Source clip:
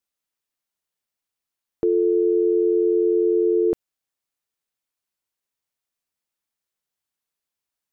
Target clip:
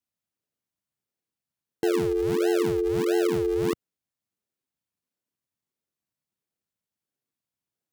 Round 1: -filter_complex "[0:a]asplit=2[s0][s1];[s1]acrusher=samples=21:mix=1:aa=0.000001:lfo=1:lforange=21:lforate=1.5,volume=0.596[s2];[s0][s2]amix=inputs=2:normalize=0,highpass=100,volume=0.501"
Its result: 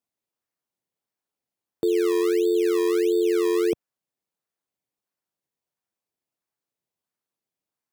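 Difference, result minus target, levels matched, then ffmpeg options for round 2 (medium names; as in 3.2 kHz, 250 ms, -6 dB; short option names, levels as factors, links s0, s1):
decimation with a swept rate: distortion -38 dB
-filter_complex "[0:a]asplit=2[s0][s1];[s1]acrusher=samples=74:mix=1:aa=0.000001:lfo=1:lforange=74:lforate=1.5,volume=0.596[s2];[s0][s2]amix=inputs=2:normalize=0,highpass=100,volume=0.501"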